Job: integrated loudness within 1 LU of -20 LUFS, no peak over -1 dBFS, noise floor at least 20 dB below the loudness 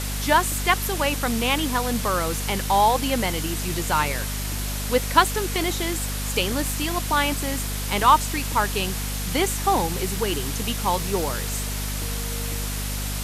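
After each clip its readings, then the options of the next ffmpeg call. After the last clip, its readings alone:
hum 50 Hz; highest harmonic 250 Hz; hum level -27 dBFS; noise floor -28 dBFS; noise floor target -44 dBFS; loudness -23.5 LUFS; peak level -3.0 dBFS; loudness target -20.0 LUFS
-> -af "bandreject=f=50:t=h:w=4,bandreject=f=100:t=h:w=4,bandreject=f=150:t=h:w=4,bandreject=f=200:t=h:w=4,bandreject=f=250:t=h:w=4"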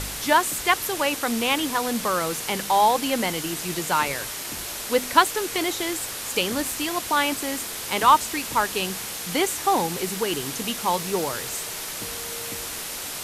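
hum not found; noise floor -33 dBFS; noise floor target -44 dBFS
-> -af "afftdn=nr=11:nf=-33"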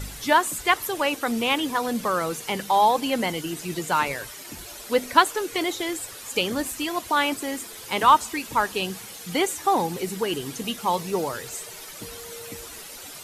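noise floor -40 dBFS; noise floor target -45 dBFS
-> -af "afftdn=nr=6:nf=-40"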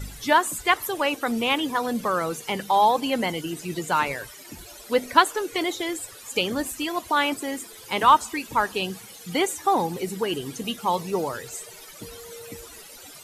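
noise floor -45 dBFS; loudness -24.5 LUFS; peak level -4.0 dBFS; loudness target -20.0 LUFS
-> -af "volume=1.68,alimiter=limit=0.891:level=0:latency=1"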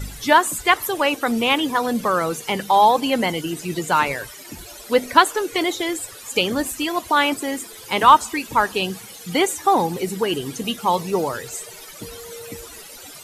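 loudness -20.0 LUFS; peak level -1.0 dBFS; noise floor -40 dBFS

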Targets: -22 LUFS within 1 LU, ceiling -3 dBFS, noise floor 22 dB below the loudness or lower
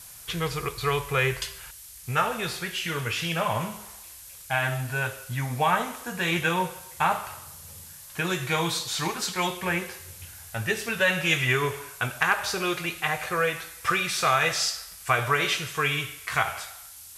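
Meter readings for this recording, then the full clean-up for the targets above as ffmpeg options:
noise floor -45 dBFS; noise floor target -49 dBFS; loudness -26.5 LUFS; peak level -8.5 dBFS; loudness target -22.0 LUFS
-> -af "afftdn=nr=6:nf=-45"
-af "volume=1.68"

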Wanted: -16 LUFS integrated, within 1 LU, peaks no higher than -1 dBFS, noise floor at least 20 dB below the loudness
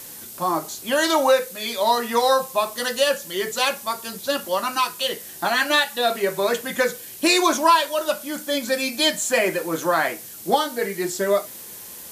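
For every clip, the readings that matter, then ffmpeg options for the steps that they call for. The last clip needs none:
noise floor -39 dBFS; noise floor target -42 dBFS; loudness -21.5 LUFS; peak level -5.0 dBFS; loudness target -16.0 LUFS
-> -af "afftdn=nr=6:nf=-39"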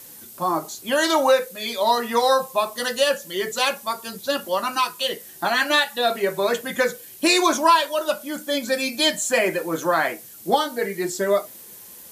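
noise floor -43 dBFS; loudness -22.0 LUFS; peak level -5.0 dBFS; loudness target -16.0 LUFS
-> -af "volume=2,alimiter=limit=0.891:level=0:latency=1"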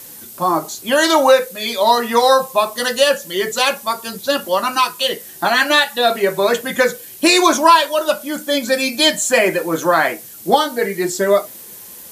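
loudness -16.0 LUFS; peak level -1.0 dBFS; noise floor -37 dBFS

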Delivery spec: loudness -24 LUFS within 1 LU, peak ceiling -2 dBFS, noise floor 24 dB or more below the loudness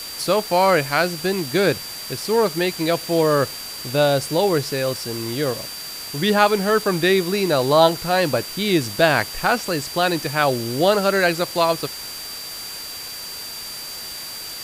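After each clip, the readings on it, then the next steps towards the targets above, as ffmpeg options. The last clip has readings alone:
steady tone 4.7 kHz; tone level -33 dBFS; noise floor -33 dBFS; noise floor target -45 dBFS; loudness -20.5 LUFS; peak level -2.0 dBFS; loudness target -24.0 LUFS
-> -af "bandreject=f=4700:w=30"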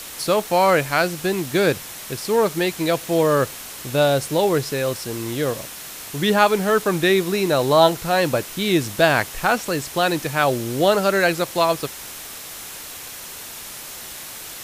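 steady tone not found; noise floor -36 dBFS; noise floor target -44 dBFS
-> -af "afftdn=nr=8:nf=-36"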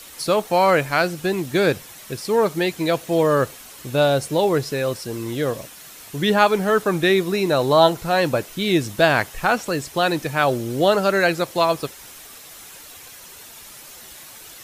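noise floor -42 dBFS; noise floor target -44 dBFS
-> -af "afftdn=nr=6:nf=-42"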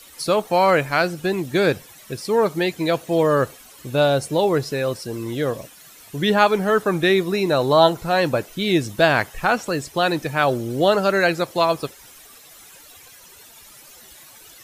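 noise floor -46 dBFS; loudness -20.0 LUFS; peak level -2.0 dBFS; loudness target -24.0 LUFS
-> -af "volume=0.631"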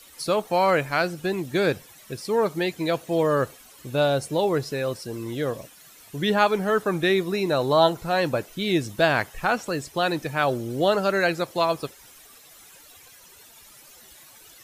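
loudness -24.0 LUFS; peak level -6.0 dBFS; noise floor -50 dBFS

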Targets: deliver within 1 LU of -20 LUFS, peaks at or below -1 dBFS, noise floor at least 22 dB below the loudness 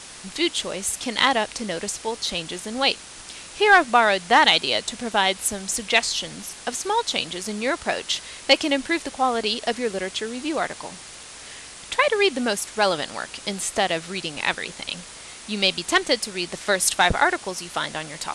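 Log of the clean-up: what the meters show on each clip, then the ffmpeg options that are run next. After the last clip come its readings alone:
noise floor -41 dBFS; noise floor target -45 dBFS; loudness -22.5 LUFS; peak level -4.5 dBFS; loudness target -20.0 LUFS
-> -af "afftdn=nr=6:nf=-41"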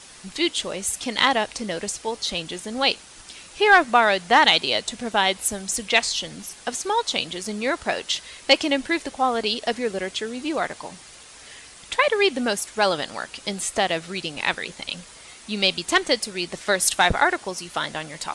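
noise floor -45 dBFS; loudness -22.5 LUFS; peak level -4.5 dBFS; loudness target -20.0 LUFS
-> -af "volume=1.33"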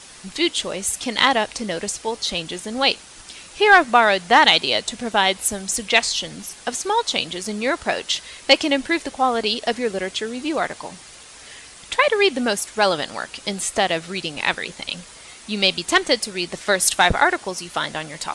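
loudness -20.0 LUFS; peak level -2.0 dBFS; noise floor -43 dBFS

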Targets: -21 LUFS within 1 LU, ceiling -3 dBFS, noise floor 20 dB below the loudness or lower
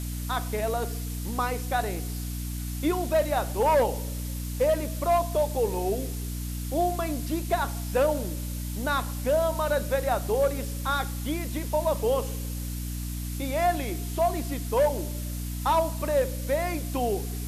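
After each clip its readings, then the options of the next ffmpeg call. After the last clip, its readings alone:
hum 60 Hz; highest harmonic 300 Hz; hum level -30 dBFS; noise floor -33 dBFS; noise floor target -48 dBFS; loudness -28.0 LUFS; peak level -13.5 dBFS; loudness target -21.0 LUFS
-> -af "bandreject=f=60:t=h:w=4,bandreject=f=120:t=h:w=4,bandreject=f=180:t=h:w=4,bandreject=f=240:t=h:w=4,bandreject=f=300:t=h:w=4"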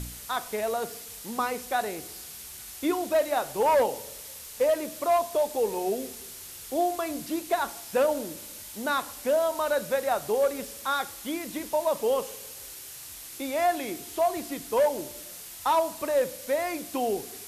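hum not found; noise floor -43 dBFS; noise floor target -48 dBFS
-> -af "afftdn=nr=6:nf=-43"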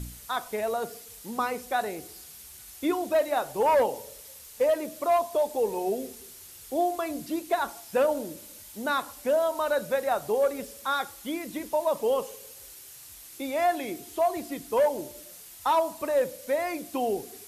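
noise floor -47 dBFS; noise floor target -48 dBFS
-> -af "afftdn=nr=6:nf=-47"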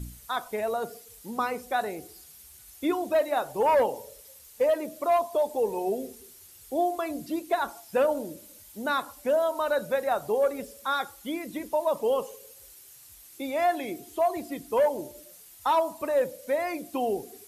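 noise floor -51 dBFS; loudness -28.5 LUFS; peak level -15.5 dBFS; loudness target -21.0 LUFS
-> -af "volume=2.37"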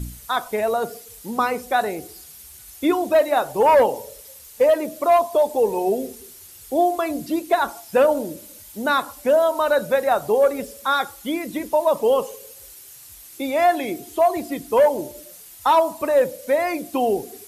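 loudness -21.0 LUFS; peak level -8.0 dBFS; noise floor -44 dBFS

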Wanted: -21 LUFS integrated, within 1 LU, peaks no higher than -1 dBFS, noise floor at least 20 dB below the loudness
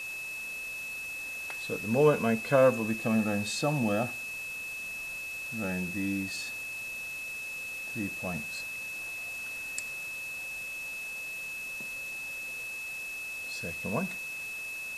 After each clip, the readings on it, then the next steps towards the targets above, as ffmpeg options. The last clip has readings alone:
steady tone 2.6 kHz; tone level -36 dBFS; noise floor -39 dBFS; noise floor target -52 dBFS; loudness -32.0 LUFS; peak level -11.0 dBFS; loudness target -21.0 LUFS
-> -af "bandreject=f=2600:w=30"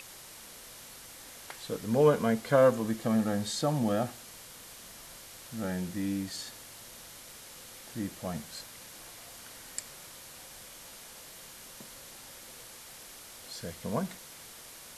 steady tone not found; noise floor -49 dBFS; noise floor target -51 dBFS
-> -af "afftdn=nr=6:nf=-49"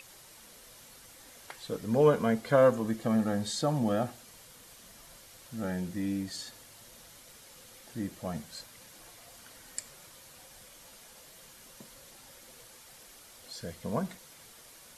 noise floor -54 dBFS; loudness -30.5 LUFS; peak level -12.0 dBFS; loudness target -21.0 LUFS
-> -af "volume=2.99"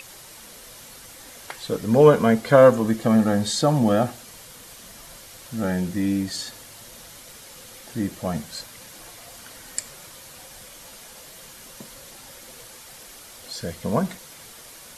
loudness -21.0 LUFS; peak level -2.5 dBFS; noise floor -44 dBFS

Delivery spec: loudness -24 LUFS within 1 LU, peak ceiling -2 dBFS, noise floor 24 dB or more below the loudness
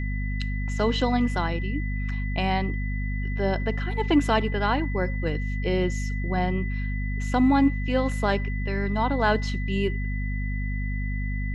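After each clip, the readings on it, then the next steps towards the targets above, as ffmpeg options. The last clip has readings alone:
hum 50 Hz; highest harmonic 250 Hz; hum level -25 dBFS; steady tone 2 kHz; tone level -37 dBFS; loudness -26.0 LUFS; peak level -9.0 dBFS; loudness target -24.0 LUFS
-> -af "bandreject=f=50:t=h:w=6,bandreject=f=100:t=h:w=6,bandreject=f=150:t=h:w=6,bandreject=f=200:t=h:w=6,bandreject=f=250:t=h:w=6"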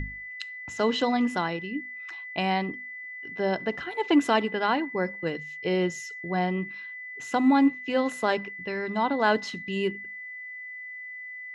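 hum not found; steady tone 2 kHz; tone level -37 dBFS
-> -af "bandreject=f=2000:w=30"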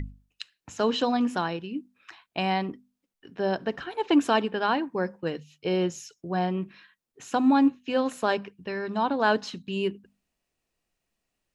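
steady tone not found; loudness -27.5 LUFS; peak level -10.5 dBFS; loudness target -24.0 LUFS
-> -af "volume=1.5"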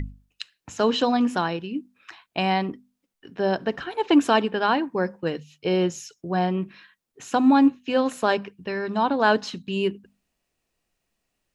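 loudness -24.0 LUFS; peak level -7.0 dBFS; noise floor -80 dBFS

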